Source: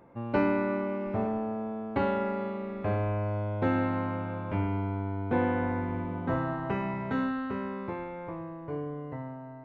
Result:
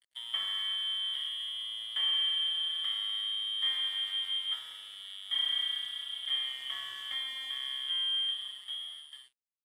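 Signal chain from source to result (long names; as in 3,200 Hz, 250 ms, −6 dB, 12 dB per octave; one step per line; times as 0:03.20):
fade-out on the ending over 1.76 s
dynamic equaliser 160 Hz, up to −5 dB, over −43 dBFS, Q 1.3
leveller curve on the samples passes 3
downward compressor 6 to 1, threshold −26 dBFS, peak gain reduction 7.5 dB
formant filter e
voice inversion scrambler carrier 3,700 Hz
dead-zone distortion −56.5 dBFS
level +5 dB
MP3 80 kbit/s 32,000 Hz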